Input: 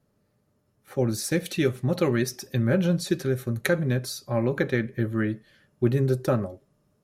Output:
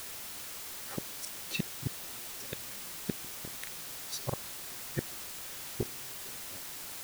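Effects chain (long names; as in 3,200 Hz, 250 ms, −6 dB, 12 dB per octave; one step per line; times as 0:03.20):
gate with flip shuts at −20 dBFS, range −39 dB
granular cloud, spray 26 ms
background noise white −44 dBFS
level +1 dB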